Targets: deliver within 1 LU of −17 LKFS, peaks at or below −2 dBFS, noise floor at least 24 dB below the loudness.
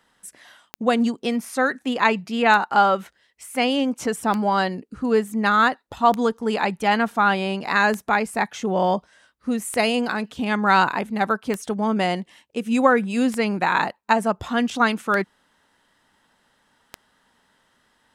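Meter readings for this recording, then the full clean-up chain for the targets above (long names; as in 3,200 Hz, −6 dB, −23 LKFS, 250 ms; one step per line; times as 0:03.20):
number of clicks 10; integrated loudness −21.5 LKFS; sample peak −4.0 dBFS; target loudness −17.0 LKFS
→ click removal
level +4.5 dB
brickwall limiter −2 dBFS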